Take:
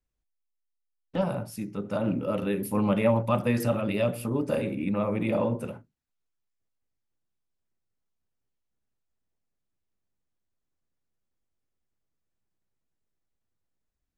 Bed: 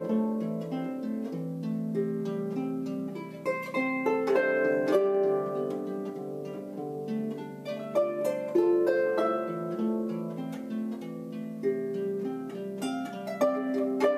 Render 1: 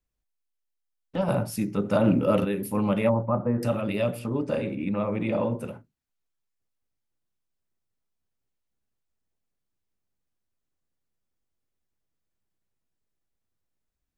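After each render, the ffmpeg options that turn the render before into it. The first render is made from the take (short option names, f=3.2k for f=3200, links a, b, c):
-filter_complex "[0:a]asettb=1/sr,asplit=3[a][b][c];[a]atrim=end=1.284[d];[b]atrim=start=1.28:end=2.45,asetpts=PTS-STARTPTS,afade=t=in:d=0.004:c=qsin,afade=t=out:st=1.166:d=0.004:c=qsin,acontrast=75[e];[c]atrim=start=2.446[f];[d][e]acrossfade=d=0.004:c1=hsin:c2=qsin[g];[g][f]acrossfade=d=0.004:c1=qsin:c2=hsin,asettb=1/sr,asplit=3[h][i][j];[h]atrim=end=3.094[k];[i]atrim=start=3.09:end=3.63,asetpts=PTS-STARTPTS,afade=t=in:d=0.004:c=qsin,afade=t=out:st=0.536:d=0.004:c=qsin,lowpass=f=1.3k:w=0.5412,lowpass=f=1.3k:w=1.3066[l];[j]atrim=start=3.626[m];[k][l]acrossfade=d=0.004:c1=hsin:c2=qsin[n];[n][m]acrossfade=d=0.004:c1=qsin:c2=hsin,asettb=1/sr,asplit=3[o][p][q];[o]atrim=end=4.194[r];[p]atrim=start=4.19:end=5.52,asetpts=PTS-STARTPTS,afade=t=in:d=0.004:c=qsin,afade=t=out:st=1.326:d=0.004:c=qsin,lowpass=6.5k[s];[q]atrim=start=5.516[t];[r][s]acrossfade=d=0.004:c1=hsin:c2=qsin[u];[u][t]acrossfade=d=0.004:c1=qsin:c2=hsin"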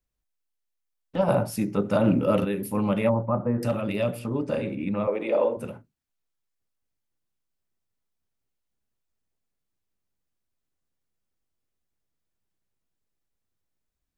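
-filter_complex "[0:a]asettb=1/sr,asplit=3[a][b][c];[a]atrim=end=1.194[d];[b]atrim=start=1.19:end=1.83,asetpts=PTS-STARTPTS,afade=t=in:d=0.004:c=qsin,afade=t=out:st=0.636:d=0.004:c=qsin,equalizer=f=710:t=o:w=1.9:g=5[e];[c]atrim=start=1.826[f];[d][e]acrossfade=d=0.004:c1=hsin:c2=qsin[g];[g][f]acrossfade=d=0.004:c1=qsin:c2=hsin,asettb=1/sr,asplit=3[h][i][j];[h]atrim=end=3.514[k];[i]atrim=start=3.51:end=4.03,asetpts=PTS-STARTPTS,afade=t=in:d=0.004:c=qsin,afade=t=out:st=0.516:d=0.004:c=qsin,asoftclip=type=hard:threshold=-16.5dB[l];[j]atrim=start=4.026[m];[k][l]acrossfade=d=0.004:c1=hsin:c2=qsin[n];[n][m]acrossfade=d=0.004:c1=qsin:c2=hsin,asettb=1/sr,asplit=3[o][p][q];[o]atrim=end=5.074[r];[p]atrim=start=5.07:end=5.57,asetpts=PTS-STARTPTS,afade=t=in:d=0.004:c=qsin,afade=t=out:st=0.496:d=0.004:c=qsin,highpass=f=450:t=q:w=2.1[s];[q]atrim=start=5.566[t];[r][s]acrossfade=d=0.004:c1=hsin:c2=qsin[u];[u][t]acrossfade=d=0.004:c1=qsin:c2=hsin"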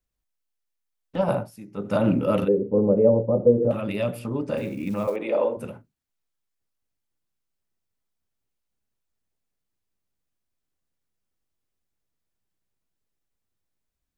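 -filter_complex "[0:a]asettb=1/sr,asplit=3[a][b][c];[a]atrim=end=2.484[d];[b]atrim=start=2.48:end=3.71,asetpts=PTS-STARTPTS,afade=t=in:d=0.004:c=qsin,afade=t=out:st=1.226:d=0.004:c=qsin,lowpass=f=470:t=q:w=5.7[e];[c]atrim=start=3.706[f];[d][e]acrossfade=d=0.004:c1=hsin:c2=qsin[g];[g][f]acrossfade=d=0.004:c1=qsin:c2=hsin,asettb=1/sr,asplit=3[h][i][j];[h]atrim=end=4.574[k];[i]atrim=start=4.57:end=5.16,asetpts=PTS-STARTPTS,afade=t=in:d=0.004:c=qsin,afade=t=out:st=0.586:d=0.004:c=qsin,acrusher=bits=7:mode=log:mix=0:aa=0.000001[l];[j]atrim=start=5.156[m];[k][l]acrossfade=d=0.004:c1=hsin:c2=qsin[n];[n][m]acrossfade=d=0.004:c1=qsin:c2=hsin,asplit=3[o][p][q];[o]atrim=end=1.51,asetpts=PTS-STARTPTS,afade=t=out:st=1.27:d=0.24:silence=0.16788[r];[p]atrim=start=1.51:end=1.71,asetpts=PTS-STARTPTS,volume=-15.5dB[s];[q]atrim=start=1.71,asetpts=PTS-STARTPTS,afade=t=in:d=0.24:silence=0.16788[t];[r][s][t]concat=n=3:v=0:a=1"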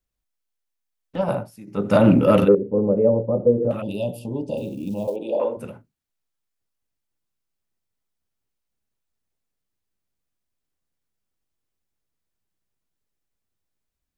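-filter_complex "[0:a]asettb=1/sr,asplit=3[a][b][c];[a]atrim=end=1.674[d];[b]atrim=start=1.67:end=2.55,asetpts=PTS-STARTPTS,afade=t=in:d=0.004:c=qsin,afade=t=out:st=0.876:d=0.004:c=qsin,acontrast=90[e];[c]atrim=start=2.546[f];[d][e]acrossfade=d=0.004:c1=hsin:c2=qsin[g];[g][f]acrossfade=d=0.004:c1=qsin:c2=hsin,asettb=1/sr,asplit=3[h][i][j];[h]atrim=end=3.824[k];[i]atrim=start=3.82:end=5.4,asetpts=PTS-STARTPTS,afade=t=in:d=0.004:c=qsin,afade=t=out:st=1.576:d=0.004:c=qsin,asuperstop=centerf=1600:order=12:qfactor=0.88[l];[j]atrim=start=5.396[m];[k][l]acrossfade=d=0.004:c1=hsin:c2=qsin[n];[n][m]acrossfade=d=0.004:c1=qsin:c2=hsin"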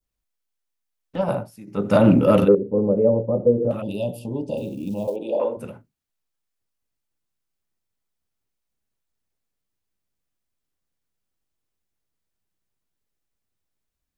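-af "adynamicequalizer=threshold=0.01:dfrequency=2000:dqfactor=1.1:tfrequency=2000:tqfactor=1.1:attack=5:release=100:ratio=0.375:range=2:mode=cutabove:tftype=bell"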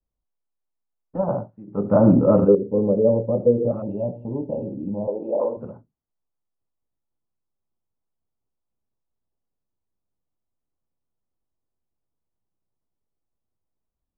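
-af "lowpass=f=1.1k:w=0.5412,lowpass=f=1.1k:w=1.3066"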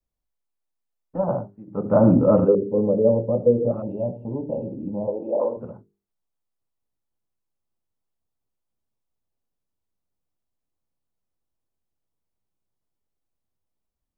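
-af "bandreject=f=50:t=h:w=6,bandreject=f=100:t=h:w=6,bandreject=f=150:t=h:w=6,bandreject=f=200:t=h:w=6,bandreject=f=250:t=h:w=6,bandreject=f=300:t=h:w=6,bandreject=f=350:t=h:w=6,bandreject=f=400:t=h:w=6,bandreject=f=450:t=h:w=6"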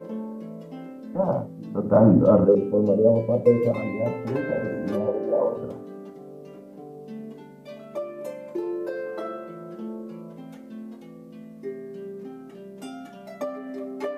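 -filter_complex "[1:a]volume=-5.5dB[a];[0:a][a]amix=inputs=2:normalize=0"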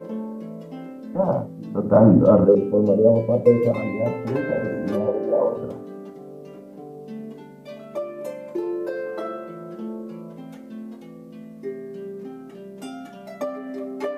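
-af "volume=2.5dB,alimiter=limit=-3dB:level=0:latency=1"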